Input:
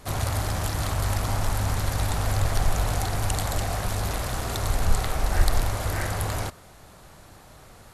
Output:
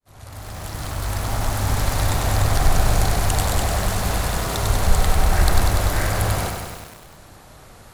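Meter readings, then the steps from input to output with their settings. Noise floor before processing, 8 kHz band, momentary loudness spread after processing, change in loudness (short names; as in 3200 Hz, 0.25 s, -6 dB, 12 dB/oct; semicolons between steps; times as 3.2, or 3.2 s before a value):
-50 dBFS, +5.5 dB, 13 LU, +5.5 dB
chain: opening faded in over 1.81 s; lo-fi delay 97 ms, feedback 80%, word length 7-bit, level -5 dB; gain +4 dB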